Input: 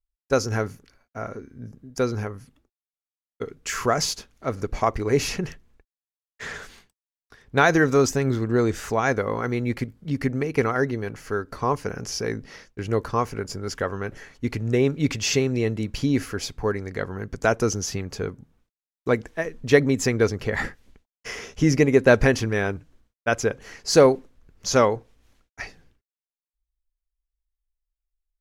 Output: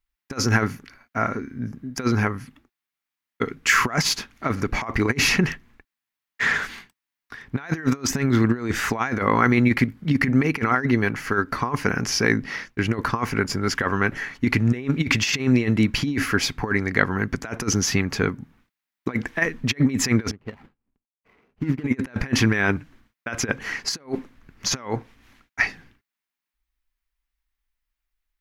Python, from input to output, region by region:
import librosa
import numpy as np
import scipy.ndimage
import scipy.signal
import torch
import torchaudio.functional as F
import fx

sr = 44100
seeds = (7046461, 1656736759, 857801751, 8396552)

y = fx.chain(x, sr, fx.median_filter(points=25),
    fx.high_shelf(hz=4400.0, db=-8.5),
    fx.upward_expand(threshold_db=-32.0, expansion=2.5), at=(20.31, 21.84))
y = fx.low_shelf(y, sr, hz=170.0, db=-7.5)
y = fx.over_compress(y, sr, threshold_db=-27.0, ratio=-0.5)
y = fx.graphic_eq(y, sr, hz=(125, 250, 500, 1000, 2000, 8000), db=(3, 6, -7, 3, 7, -5))
y = F.gain(torch.from_numpy(y), 4.0).numpy()